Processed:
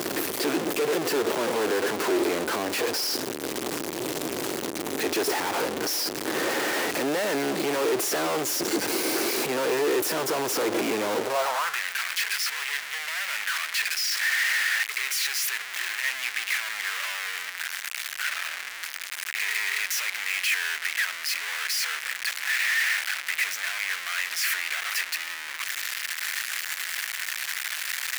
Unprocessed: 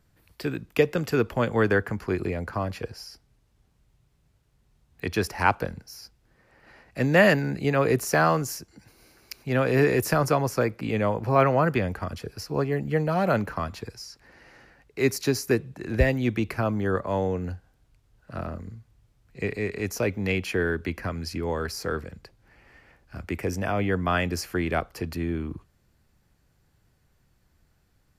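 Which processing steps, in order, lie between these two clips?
sign of each sample alone
high-pass filter sweep 340 Hz → 1,900 Hz, 0:11.17–0:11.83

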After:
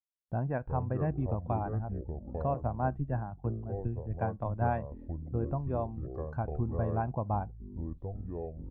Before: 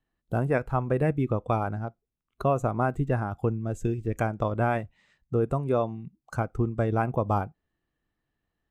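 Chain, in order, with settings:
low-pass filter 1,200 Hz 12 dB per octave
downward expander −55 dBFS
comb filter 1.2 ms, depth 51%
delay with pitch and tempo change per echo 226 ms, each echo −6 semitones, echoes 3, each echo −6 dB
0:02.54–0:04.82: multiband upward and downward expander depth 100%
level −7.5 dB

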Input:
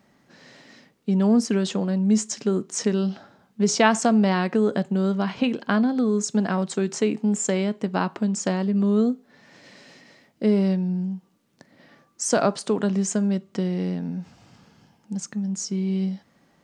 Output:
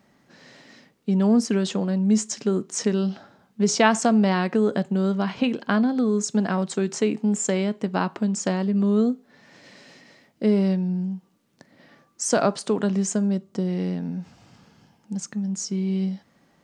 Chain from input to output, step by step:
0:13.09–0:13.67: parametric band 2,300 Hz −2 dB → −9.5 dB 1.7 octaves

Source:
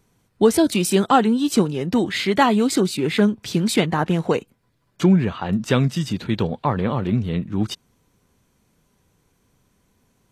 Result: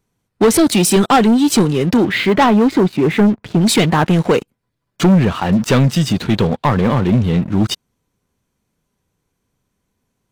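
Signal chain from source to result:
0:01.96–0:03.60: low-pass filter 2,900 Hz → 1,500 Hz 12 dB per octave
leveller curve on the samples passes 3
level −1.5 dB

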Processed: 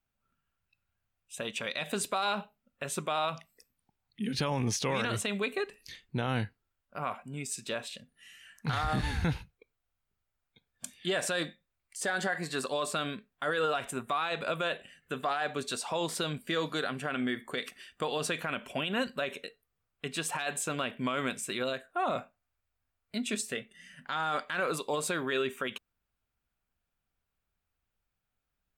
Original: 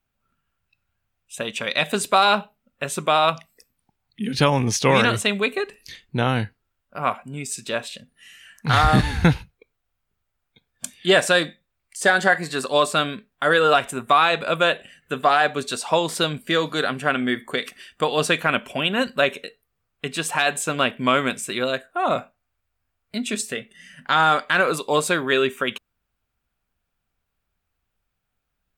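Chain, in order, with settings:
brickwall limiter −14.5 dBFS, peak gain reduction 9 dB
level −7 dB

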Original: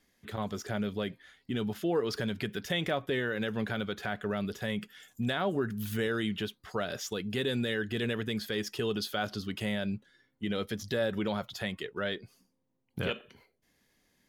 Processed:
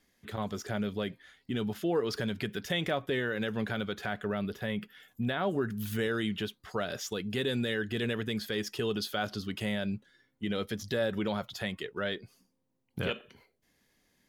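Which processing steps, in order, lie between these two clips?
0:04.25–0:05.42: parametric band 7,100 Hz −7.5 dB → −15 dB 1.1 octaves

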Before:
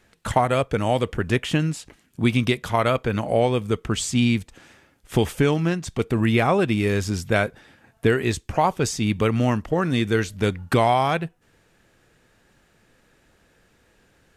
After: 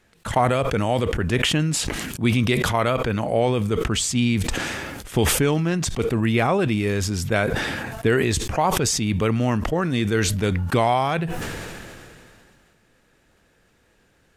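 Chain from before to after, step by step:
level that may fall only so fast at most 24 dB per second
level −1.5 dB

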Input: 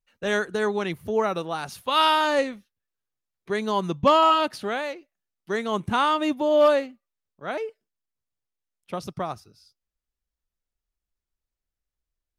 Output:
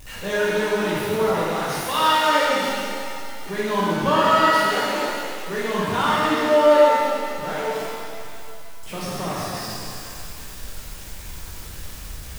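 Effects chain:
converter with a step at zero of −28.5 dBFS
reverb with rising layers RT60 2.3 s, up +7 semitones, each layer −8 dB, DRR −8 dB
level −7.5 dB

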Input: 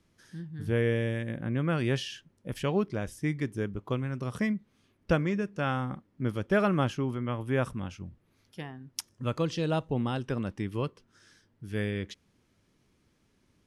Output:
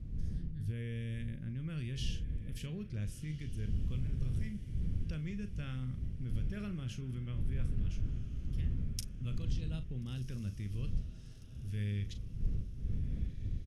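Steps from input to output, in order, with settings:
wind on the microphone 210 Hz −35 dBFS
drawn EQ curve 180 Hz 0 dB, 280 Hz +6 dB, 850 Hz −29 dB, 2,300 Hz −17 dB
brickwall limiter −26.5 dBFS, peak gain reduction 12.5 dB
guitar amp tone stack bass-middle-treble 10-0-10
double-tracking delay 39 ms −11 dB
feedback delay with all-pass diffusion 1,399 ms, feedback 47%, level −14 dB
level +11.5 dB

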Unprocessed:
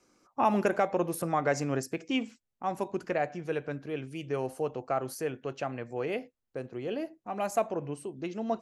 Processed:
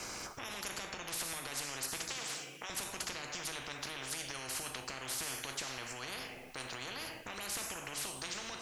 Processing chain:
0:02.09–0:02.70: elliptic high-pass filter 440 Hz
downward compressor, threshold −36 dBFS, peak gain reduction 15.5 dB
brickwall limiter −36 dBFS, peak gain reduction 11.5 dB
coupled-rooms reverb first 0.52 s, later 3.2 s, from −28 dB, DRR 6.5 dB
every bin compressed towards the loudest bin 10 to 1
level +8.5 dB

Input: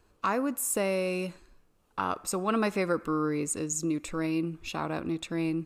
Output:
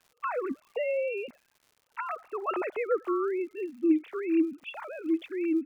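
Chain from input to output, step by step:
three sine waves on the formant tracks
surface crackle 150 per second −49 dBFS

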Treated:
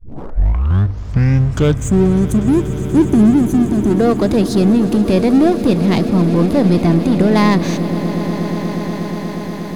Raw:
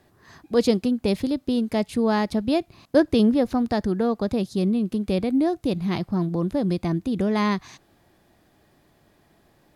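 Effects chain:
turntable start at the beginning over 2.41 s
gain on a spectral selection 0:01.74–0:03.91, 430–5,900 Hz −22 dB
power curve on the samples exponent 0.7
on a send: echo that builds up and dies away 120 ms, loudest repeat 8, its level −17 dB
on the sum: level +7 dB

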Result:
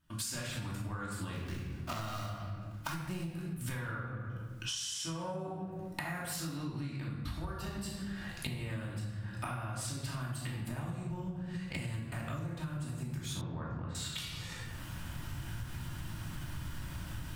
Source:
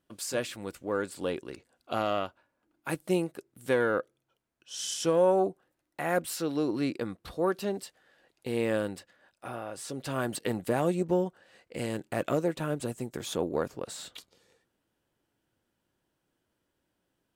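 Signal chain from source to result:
0:01.33–0:03.30: gap after every zero crossing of 0.14 ms
camcorder AGC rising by 32 dB per second
drawn EQ curve 120 Hz 0 dB, 460 Hz −26 dB, 1,000 Hz −10 dB
rectangular room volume 610 cubic metres, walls mixed, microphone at 2.7 metres
downward compressor 12 to 1, threshold −44 dBFS, peak gain reduction 18.5 dB
0:13.41–0:13.95: low-pass filter 2,100 Hz 12 dB per octave
level +8.5 dB

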